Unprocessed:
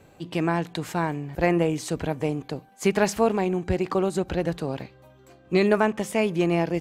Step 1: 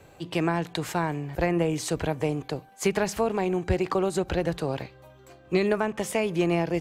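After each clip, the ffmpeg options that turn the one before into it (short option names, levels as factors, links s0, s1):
-filter_complex "[0:a]equalizer=f=220:t=o:w=0.9:g=-6.5,acrossover=split=260[s0][s1];[s1]acompressor=threshold=0.0562:ratio=6[s2];[s0][s2]amix=inputs=2:normalize=0,volume=1.33"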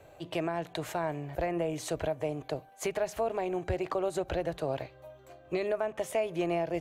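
-af "equalizer=f=200:t=o:w=0.33:g=-11,equalizer=f=630:t=o:w=0.33:g=11,equalizer=f=5000:t=o:w=0.33:g=-5,equalizer=f=8000:t=o:w=0.33:g=-3,alimiter=limit=0.158:level=0:latency=1:release=274,volume=0.596"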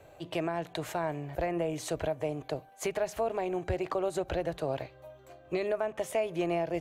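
-af anull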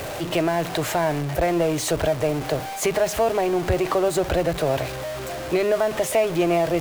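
-af "aeval=exprs='val(0)+0.5*0.0178*sgn(val(0))':c=same,volume=2.66"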